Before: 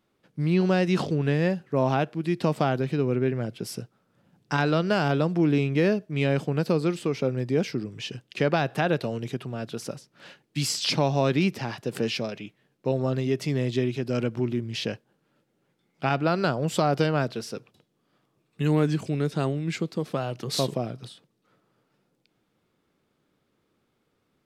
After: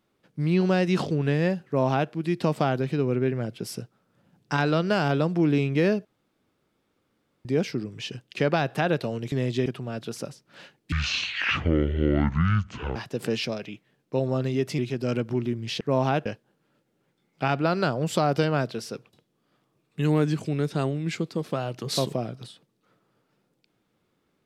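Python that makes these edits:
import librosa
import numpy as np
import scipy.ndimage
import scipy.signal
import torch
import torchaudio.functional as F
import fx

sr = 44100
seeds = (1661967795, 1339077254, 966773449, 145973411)

y = fx.edit(x, sr, fx.duplicate(start_s=1.66, length_s=0.45, to_s=14.87),
    fx.room_tone_fill(start_s=6.05, length_s=1.4),
    fx.speed_span(start_s=10.58, length_s=1.1, speed=0.54),
    fx.move(start_s=13.51, length_s=0.34, to_s=9.32), tone=tone)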